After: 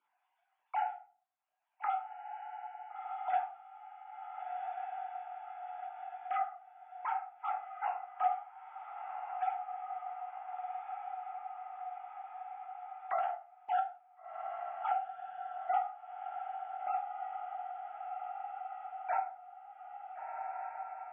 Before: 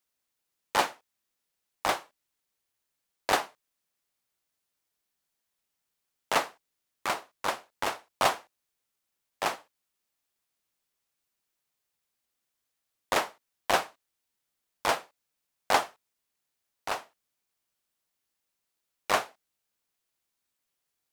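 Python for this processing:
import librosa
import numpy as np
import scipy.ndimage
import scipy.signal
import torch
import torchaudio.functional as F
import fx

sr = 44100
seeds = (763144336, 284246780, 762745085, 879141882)

y = fx.sine_speech(x, sr)
y = fx.bandpass_q(y, sr, hz=360.0, q=1.4)
y = fx.room_shoebox(y, sr, seeds[0], volume_m3=220.0, walls='furnished', distance_m=2.9)
y = fx.transient(y, sr, attack_db=-5, sustain_db=8, at=(13.17, 13.81))
y = fx.echo_diffused(y, sr, ms=1435, feedback_pct=43, wet_db=-13.0)
y = fx.band_squash(y, sr, depth_pct=70)
y = F.gain(torch.from_numpy(y), 1.0).numpy()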